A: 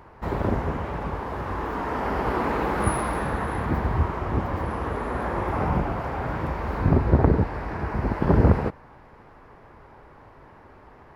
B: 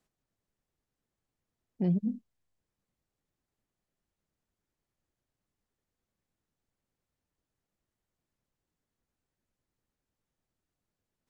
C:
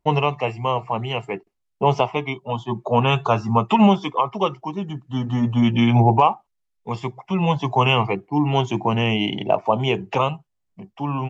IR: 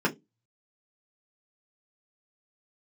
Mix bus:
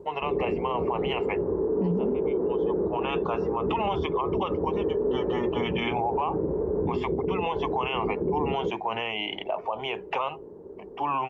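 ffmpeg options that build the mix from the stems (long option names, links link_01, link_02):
-filter_complex "[0:a]highpass=frequency=80:poles=1,acompressor=threshold=-27dB:ratio=6,lowpass=frequency=410:width_type=q:width=4.5,volume=-1.5dB,asplit=2[link_01][link_02];[link_02]volume=-19dB[link_03];[1:a]volume=1.5dB,asplit=3[link_04][link_05][link_06];[link_05]volume=-23dB[link_07];[2:a]acrossover=split=460 3400:gain=0.0708 1 0.126[link_08][link_09][link_10];[link_08][link_09][link_10]amix=inputs=3:normalize=0,dynaudnorm=framelen=150:gausssize=3:maxgain=11dB,volume=-6.5dB[link_11];[link_06]apad=whole_len=497909[link_12];[link_11][link_12]sidechaincompress=threshold=-43dB:ratio=16:attack=16:release=1100[link_13];[3:a]atrim=start_sample=2205[link_14];[link_03][link_07]amix=inputs=2:normalize=0[link_15];[link_15][link_14]afir=irnorm=-1:irlink=0[link_16];[link_01][link_04][link_13][link_16]amix=inputs=4:normalize=0,alimiter=limit=-18.5dB:level=0:latency=1:release=45"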